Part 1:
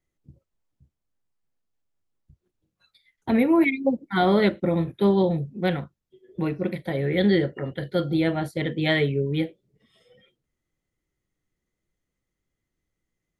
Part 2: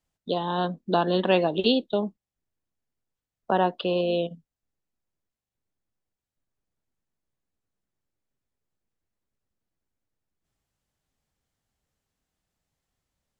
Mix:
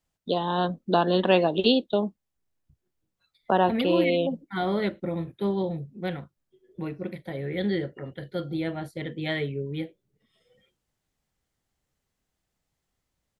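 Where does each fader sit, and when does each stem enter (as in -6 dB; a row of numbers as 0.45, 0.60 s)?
-7.0, +1.0 dB; 0.40, 0.00 s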